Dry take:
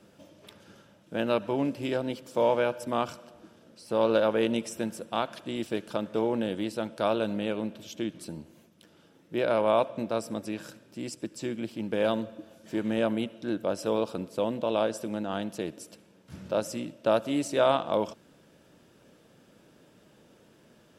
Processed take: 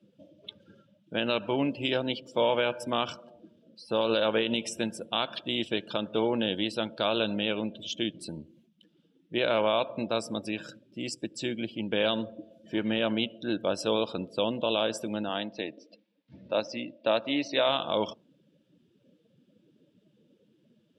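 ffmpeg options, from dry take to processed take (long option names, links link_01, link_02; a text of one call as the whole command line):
ffmpeg -i in.wav -filter_complex "[0:a]asettb=1/sr,asplit=3[link_01][link_02][link_03];[link_01]atrim=end=15.294[link_04];[link_02]atrim=start=15.29:end=17.69,asetpts=PTS-STARTPTS,afade=type=in:duration=0.004:curve=qsin,afade=type=out:start_time=2.396:duration=0.004:curve=qsin,highpass=150,equalizer=frequency=170:width_type=q:width=4:gain=-10,equalizer=frequency=390:width_type=q:width=4:gain=-5,equalizer=frequency=1400:width_type=q:width=4:gain=-4,equalizer=frequency=2000:width_type=q:width=4:gain=3,equalizer=frequency=3100:width_type=q:width=4:gain=-5,lowpass=frequency=5100:width=0.5412,lowpass=frequency=5100:width=1.3066[link_05];[link_03]atrim=start=17.686[link_06];[link_04][link_05]acrossfade=duration=0.004:curve1=hsin:curve2=qsin[link_07];[link_07][link_06]acrossfade=duration=0.004:curve1=qsin:curve2=hsin,afftdn=noise_reduction=23:noise_floor=-48,equalizer=frequency=3300:width_type=o:width=1.2:gain=13.5,alimiter=limit=-13.5dB:level=0:latency=1:release=80" out.wav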